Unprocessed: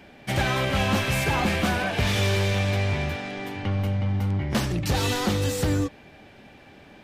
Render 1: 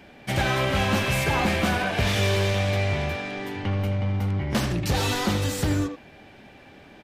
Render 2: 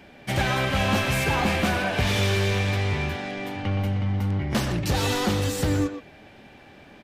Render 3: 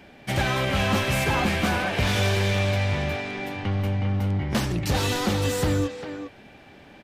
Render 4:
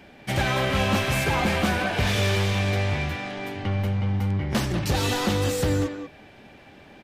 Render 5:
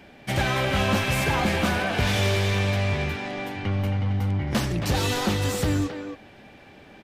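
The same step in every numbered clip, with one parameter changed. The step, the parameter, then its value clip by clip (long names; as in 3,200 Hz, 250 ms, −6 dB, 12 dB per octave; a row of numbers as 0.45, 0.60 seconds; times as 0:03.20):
far-end echo of a speakerphone, delay time: 80, 120, 400, 190, 270 milliseconds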